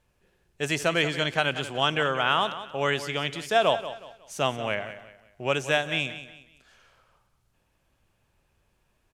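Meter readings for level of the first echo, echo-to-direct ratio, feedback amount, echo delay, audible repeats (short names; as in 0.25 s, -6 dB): -13.0 dB, -12.5 dB, 33%, 0.183 s, 3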